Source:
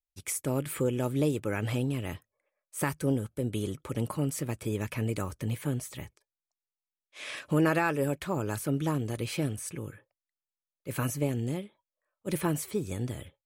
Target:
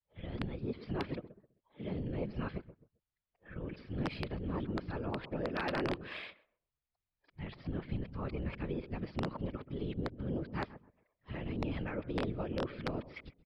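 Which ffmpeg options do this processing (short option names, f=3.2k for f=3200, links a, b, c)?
-filter_complex "[0:a]areverse,acompressor=threshold=-45dB:ratio=2,asplit=2[a][b];[b]adelay=131,lowpass=f=990:p=1,volume=-14dB,asplit=2[c][d];[d]adelay=131,lowpass=f=990:p=1,volume=0.29,asplit=2[e][f];[f]adelay=131,lowpass=f=990:p=1,volume=0.29[g];[a][c][e][g]amix=inputs=4:normalize=0,afftfilt=real='hypot(re,im)*cos(2*PI*random(0))':imag='hypot(re,im)*sin(2*PI*random(1))':win_size=512:overlap=0.75,aresample=11025,aeval=exprs='(mod(53.1*val(0)+1,2)-1)/53.1':c=same,aresample=44100,adynamicsmooth=sensitivity=6:basefreq=4.1k,volume=9dB"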